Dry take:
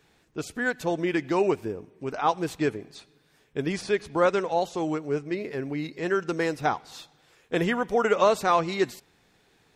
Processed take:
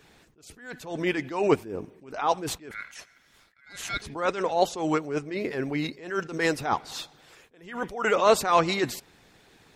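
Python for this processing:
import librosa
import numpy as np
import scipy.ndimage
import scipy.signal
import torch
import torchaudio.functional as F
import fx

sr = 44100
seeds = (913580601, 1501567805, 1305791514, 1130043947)

y = fx.hpss(x, sr, part='percussive', gain_db=7)
y = fx.ring_mod(y, sr, carrier_hz=1800.0, at=(2.71, 4.02))
y = fx.attack_slew(y, sr, db_per_s=110.0)
y = y * 10.0 ** (2.0 / 20.0)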